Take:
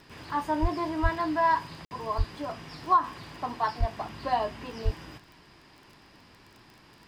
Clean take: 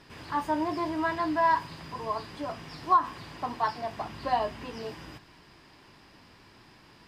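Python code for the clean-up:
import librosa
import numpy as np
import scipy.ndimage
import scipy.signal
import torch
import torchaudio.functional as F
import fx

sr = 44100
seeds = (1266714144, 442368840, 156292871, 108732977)

y = fx.fix_declick_ar(x, sr, threshold=6.5)
y = fx.fix_deplosive(y, sr, at_s=(0.61, 1.02, 2.17, 3.79, 4.84))
y = fx.fix_interpolate(y, sr, at_s=(1.85,), length_ms=59.0)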